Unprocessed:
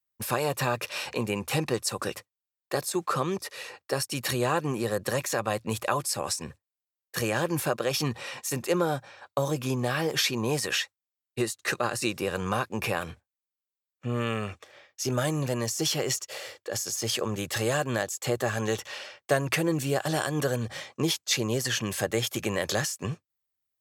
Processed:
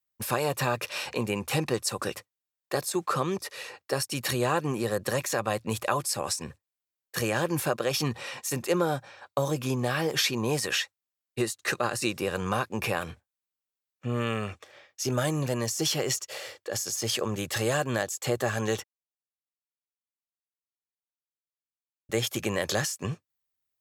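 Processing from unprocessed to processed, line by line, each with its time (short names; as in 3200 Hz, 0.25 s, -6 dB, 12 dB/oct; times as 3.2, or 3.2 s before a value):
18.84–22.09 mute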